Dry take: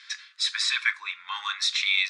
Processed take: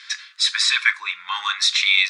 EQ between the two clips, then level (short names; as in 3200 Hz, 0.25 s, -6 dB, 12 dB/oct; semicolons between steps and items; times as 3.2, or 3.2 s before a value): low shelf 420 Hz +5.5 dB; high shelf 9600 Hz +4 dB; +6.5 dB